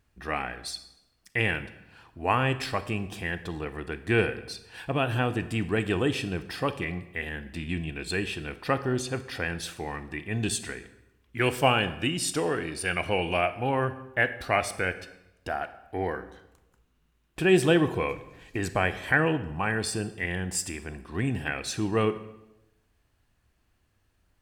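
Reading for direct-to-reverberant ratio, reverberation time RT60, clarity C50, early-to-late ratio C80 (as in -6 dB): 12.0 dB, 0.90 s, 13.5 dB, 16.0 dB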